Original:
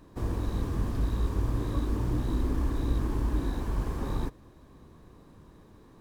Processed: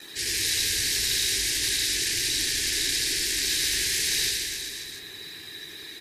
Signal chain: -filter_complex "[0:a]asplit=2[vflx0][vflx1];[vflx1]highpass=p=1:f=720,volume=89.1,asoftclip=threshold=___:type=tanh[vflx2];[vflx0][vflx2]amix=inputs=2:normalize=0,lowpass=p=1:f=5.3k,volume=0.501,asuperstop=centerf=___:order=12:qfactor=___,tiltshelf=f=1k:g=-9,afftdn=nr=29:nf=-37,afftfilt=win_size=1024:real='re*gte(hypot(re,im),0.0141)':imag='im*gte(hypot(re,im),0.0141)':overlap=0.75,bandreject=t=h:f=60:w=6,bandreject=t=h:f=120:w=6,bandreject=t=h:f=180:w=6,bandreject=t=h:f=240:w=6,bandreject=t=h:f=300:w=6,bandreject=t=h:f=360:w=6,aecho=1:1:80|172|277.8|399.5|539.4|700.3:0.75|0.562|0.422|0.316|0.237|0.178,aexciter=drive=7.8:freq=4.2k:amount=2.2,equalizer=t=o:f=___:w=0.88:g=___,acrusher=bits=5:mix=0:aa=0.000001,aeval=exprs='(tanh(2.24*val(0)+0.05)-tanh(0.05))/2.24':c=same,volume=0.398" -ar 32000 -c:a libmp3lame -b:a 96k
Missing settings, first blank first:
0.2, 850, 0.68, 230, -13